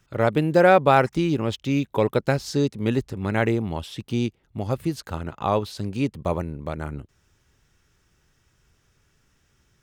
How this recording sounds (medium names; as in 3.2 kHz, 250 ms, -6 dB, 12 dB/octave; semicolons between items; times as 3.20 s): noise floor -67 dBFS; spectral tilt -5.5 dB/octave